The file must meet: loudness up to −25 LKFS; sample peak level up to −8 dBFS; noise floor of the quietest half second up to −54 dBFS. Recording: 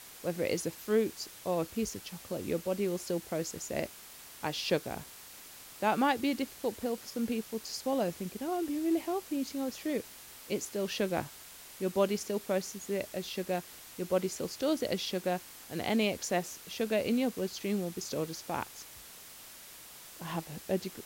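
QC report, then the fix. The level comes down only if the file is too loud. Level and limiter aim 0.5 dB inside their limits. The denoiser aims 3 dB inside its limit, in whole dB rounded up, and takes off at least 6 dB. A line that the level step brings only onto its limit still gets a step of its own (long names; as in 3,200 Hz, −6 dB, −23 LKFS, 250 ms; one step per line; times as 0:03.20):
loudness −34.0 LKFS: in spec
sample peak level −15.5 dBFS: in spec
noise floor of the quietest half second −51 dBFS: out of spec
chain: broadband denoise 6 dB, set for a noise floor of −51 dBFS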